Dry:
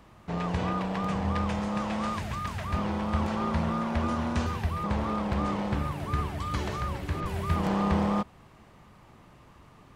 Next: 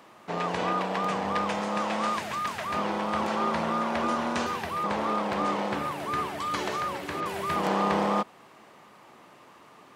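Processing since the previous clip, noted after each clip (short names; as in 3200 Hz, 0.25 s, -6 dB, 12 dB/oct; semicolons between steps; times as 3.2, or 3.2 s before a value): HPF 320 Hz 12 dB/oct; gain +5 dB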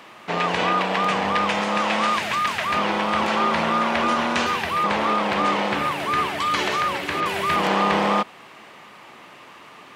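bell 2600 Hz +8 dB 1.7 oct; in parallel at -1.5 dB: limiter -18 dBFS, peak gain reduction 10 dB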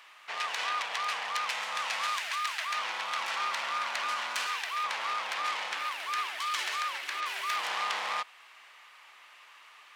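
self-modulated delay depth 0.16 ms; HPF 1300 Hz 12 dB/oct; gain -6.5 dB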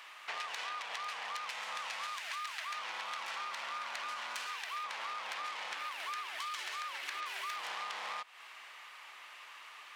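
compressor 10:1, threshold -40 dBFS, peak gain reduction 13 dB; gain +2.5 dB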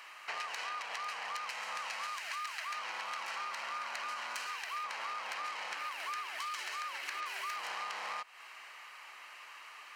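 notch 3500 Hz, Q 5.6; gain +1 dB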